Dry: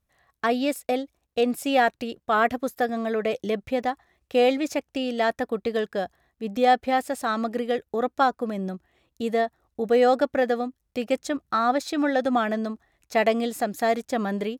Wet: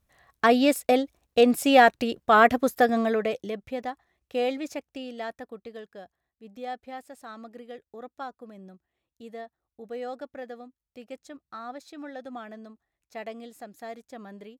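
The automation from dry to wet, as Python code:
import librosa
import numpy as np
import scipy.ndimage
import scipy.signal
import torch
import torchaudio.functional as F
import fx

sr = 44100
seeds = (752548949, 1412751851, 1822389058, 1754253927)

y = fx.gain(x, sr, db=fx.line((2.99, 4.0), (3.52, -7.0), (4.66, -7.0), (5.86, -16.5)))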